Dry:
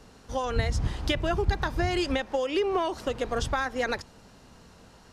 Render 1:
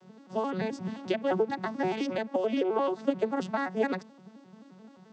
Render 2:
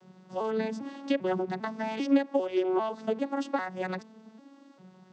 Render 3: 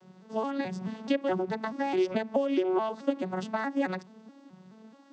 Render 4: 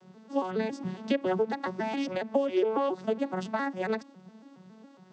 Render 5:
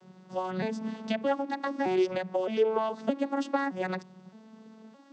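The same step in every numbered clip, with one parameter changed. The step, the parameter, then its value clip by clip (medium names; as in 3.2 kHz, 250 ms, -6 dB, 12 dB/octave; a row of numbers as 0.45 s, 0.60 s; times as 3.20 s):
vocoder on a broken chord, a note every: 87 ms, 398 ms, 214 ms, 138 ms, 617 ms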